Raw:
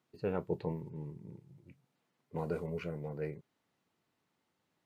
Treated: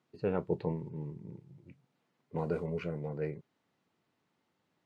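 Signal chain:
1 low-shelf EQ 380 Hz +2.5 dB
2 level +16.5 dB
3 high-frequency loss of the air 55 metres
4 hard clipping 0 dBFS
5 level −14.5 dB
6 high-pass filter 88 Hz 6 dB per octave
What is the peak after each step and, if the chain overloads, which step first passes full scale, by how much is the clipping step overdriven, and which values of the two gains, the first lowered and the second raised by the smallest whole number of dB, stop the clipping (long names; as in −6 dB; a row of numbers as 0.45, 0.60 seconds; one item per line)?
−19.0, −2.5, −2.5, −2.5, −17.0, −17.5 dBFS
no step passes full scale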